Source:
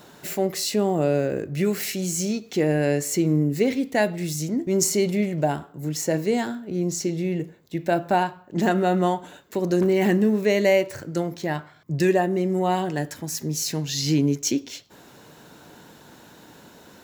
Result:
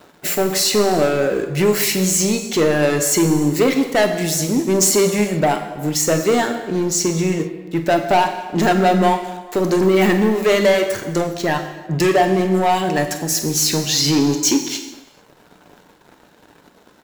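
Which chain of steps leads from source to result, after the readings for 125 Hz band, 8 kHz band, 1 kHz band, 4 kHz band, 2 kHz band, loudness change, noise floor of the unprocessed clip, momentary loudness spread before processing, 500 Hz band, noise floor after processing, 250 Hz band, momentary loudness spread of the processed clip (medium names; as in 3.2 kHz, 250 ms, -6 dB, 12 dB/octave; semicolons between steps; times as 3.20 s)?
+3.5 dB, +10.0 dB, +8.0 dB, +10.0 dB, +7.5 dB, +6.5 dB, -50 dBFS, 9 LU, +6.0 dB, -51 dBFS, +5.0 dB, 7 LU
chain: reverb removal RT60 0.62 s; bass shelf 170 Hz -10.5 dB; waveshaping leveller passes 3; doubling 48 ms -13.5 dB; gated-style reverb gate 480 ms falling, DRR 6 dB; tape noise reduction on one side only decoder only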